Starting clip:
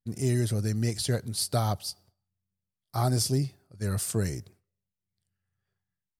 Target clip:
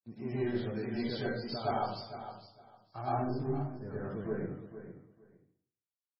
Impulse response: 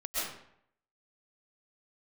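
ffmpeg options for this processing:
-filter_complex "[0:a]asetnsamples=n=441:p=0,asendcmd='3.01 lowpass f 1200',lowpass=2.9k,agate=range=-51dB:threshold=-54dB:ratio=16:detection=peak,highpass=160,asoftclip=type=tanh:threshold=-21.5dB,flanger=delay=6.1:depth=8.4:regen=-67:speed=1:shape=triangular,aecho=1:1:456|912:0.266|0.0506[a];[1:a]atrim=start_sample=2205,asetrate=52920,aresample=44100[b];[a][b]afir=irnorm=-1:irlink=0" -ar 22050 -c:a libmp3lame -b:a 16k

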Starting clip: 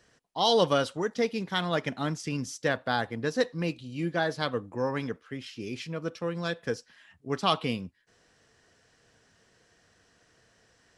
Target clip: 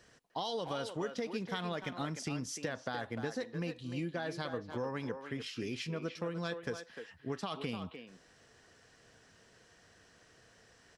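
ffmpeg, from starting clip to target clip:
-filter_complex "[0:a]alimiter=limit=-18.5dB:level=0:latency=1:release=87,acompressor=threshold=-36dB:ratio=5,asplit=2[a][b];[b]adelay=300,highpass=300,lowpass=3.4k,asoftclip=type=hard:threshold=-31.5dB,volume=-7dB[c];[a][c]amix=inputs=2:normalize=0,volume=1dB"

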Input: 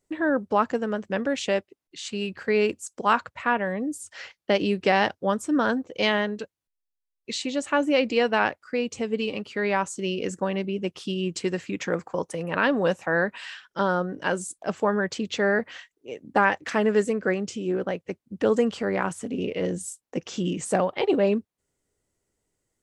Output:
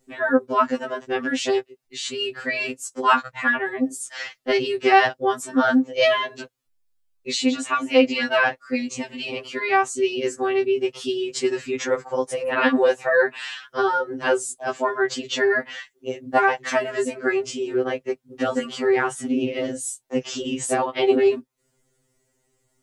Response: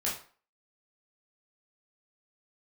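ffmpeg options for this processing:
-filter_complex "[0:a]asplit=2[a][b];[b]acompressor=threshold=-38dB:ratio=4,volume=0dB[c];[a][c]amix=inputs=2:normalize=0,afftfilt=real='re*2.45*eq(mod(b,6),0)':imag='im*2.45*eq(mod(b,6),0)':win_size=2048:overlap=0.75,volume=5dB"

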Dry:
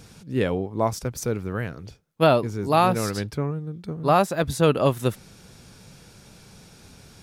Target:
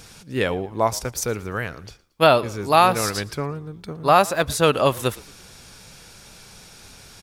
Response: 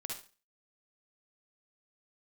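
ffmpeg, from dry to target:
-filter_complex "[0:a]equalizer=f=170:w=0.35:g=-10,asplit=4[a][b][c][d];[b]adelay=114,afreqshift=-49,volume=-22.5dB[e];[c]adelay=228,afreqshift=-98,volume=-29.4dB[f];[d]adelay=342,afreqshift=-147,volume=-36.4dB[g];[a][e][f][g]amix=inputs=4:normalize=0,volume=7dB"

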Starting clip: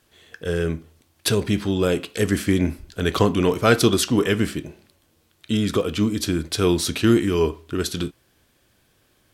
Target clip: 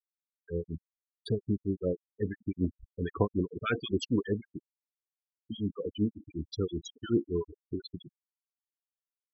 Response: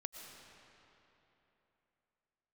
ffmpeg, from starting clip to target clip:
-filter_complex "[0:a]acrusher=bits=9:dc=4:mix=0:aa=0.000001,acrossover=split=1200[a][b];[a]aeval=exprs='val(0)*(1-1/2+1/2*cos(2*PI*5.3*n/s))':c=same[c];[b]aeval=exprs='val(0)*(1-1/2-1/2*cos(2*PI*5.3*n/s))':c=same[d];[c][d]amix=inputs=2:normalize=0,afftfilt=real='re*gte(hypot(re,im),0.126)':imag='im*gte(hypot(re,im),0.126)':win_size=1024:overlap=0.75,volume=-7dB"

